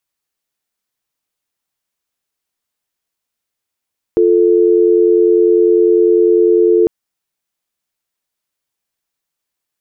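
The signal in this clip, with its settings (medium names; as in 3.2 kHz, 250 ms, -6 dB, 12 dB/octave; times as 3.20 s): call progress tone dial tone, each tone -10 dBFS 2.70 s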